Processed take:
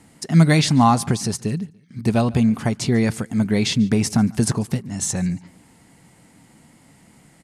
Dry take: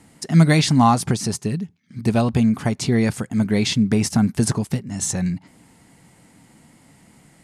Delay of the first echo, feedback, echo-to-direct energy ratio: 144 ms, 36%, -23.0 dB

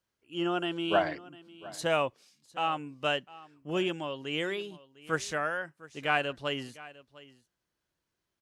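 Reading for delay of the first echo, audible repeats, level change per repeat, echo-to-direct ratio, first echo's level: 703 ms, 1, no regular repeats, -19.5 dB, -19.5 dB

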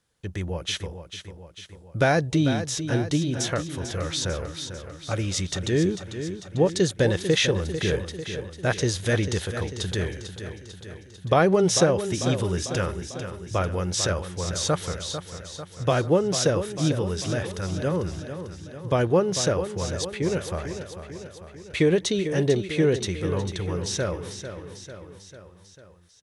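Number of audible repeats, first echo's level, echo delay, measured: 5, -10.0 dB, 446 ms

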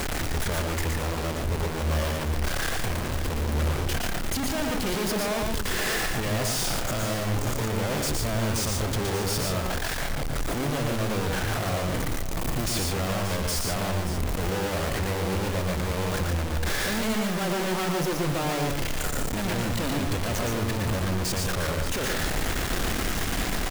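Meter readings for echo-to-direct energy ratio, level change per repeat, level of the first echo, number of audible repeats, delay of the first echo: -1.5 dB, no regular repeats, -4.0 dB, 2, 117 ms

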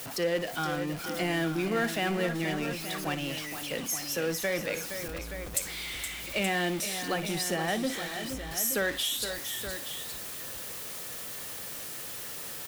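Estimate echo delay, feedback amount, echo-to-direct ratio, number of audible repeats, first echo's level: 56 ms, no regular repeats, -6.0 dB, 3, -15.5 dB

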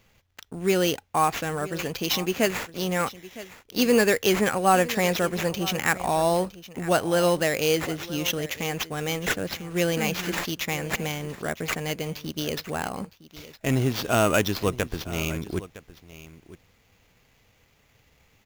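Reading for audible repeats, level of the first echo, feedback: 1, -17.0 dB, no regular repeats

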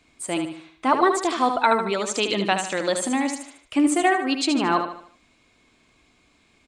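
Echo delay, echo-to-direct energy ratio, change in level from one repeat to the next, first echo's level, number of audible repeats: 75 ms, -6.0 dB, -7.5 dB, -7.0 dB, 4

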